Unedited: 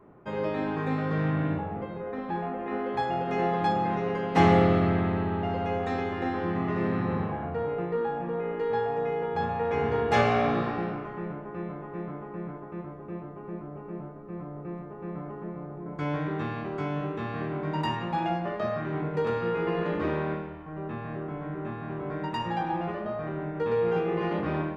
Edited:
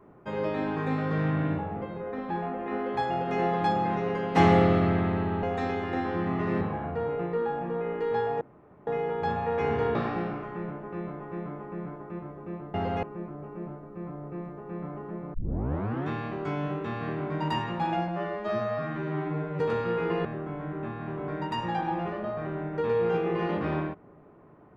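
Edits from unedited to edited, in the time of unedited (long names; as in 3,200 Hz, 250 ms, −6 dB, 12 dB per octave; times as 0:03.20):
0:05.43–0:05.72: move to 0:13.36
0:06.90–0:07.20: remove
0:09.00: splice in room tone 0.46 s
0:10.08–0:10.57: remove
0:15.67: tape start 0.75 s
0:18.41–0:19.17: time-stretch 2×
0:19.82–0:21.07: remove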